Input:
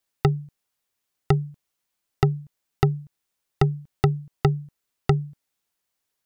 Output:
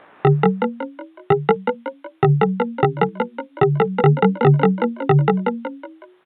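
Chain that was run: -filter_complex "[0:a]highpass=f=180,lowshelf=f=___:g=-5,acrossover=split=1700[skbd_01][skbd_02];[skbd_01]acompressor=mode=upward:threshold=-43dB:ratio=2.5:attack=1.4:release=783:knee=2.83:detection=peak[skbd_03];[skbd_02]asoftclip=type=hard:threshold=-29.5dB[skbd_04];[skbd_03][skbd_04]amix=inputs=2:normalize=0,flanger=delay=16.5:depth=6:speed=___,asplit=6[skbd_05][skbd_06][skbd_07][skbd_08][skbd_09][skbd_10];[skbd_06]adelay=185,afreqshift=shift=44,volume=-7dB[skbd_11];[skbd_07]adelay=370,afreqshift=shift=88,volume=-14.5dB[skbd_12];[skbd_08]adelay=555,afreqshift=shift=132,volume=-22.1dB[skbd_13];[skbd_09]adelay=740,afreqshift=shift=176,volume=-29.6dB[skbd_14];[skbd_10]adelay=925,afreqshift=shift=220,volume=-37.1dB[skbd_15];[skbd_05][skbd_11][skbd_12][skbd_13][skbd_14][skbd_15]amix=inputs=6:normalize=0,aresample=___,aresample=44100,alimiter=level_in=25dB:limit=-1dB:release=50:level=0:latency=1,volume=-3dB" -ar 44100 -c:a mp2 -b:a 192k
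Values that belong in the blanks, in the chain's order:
250, 1.4, 8000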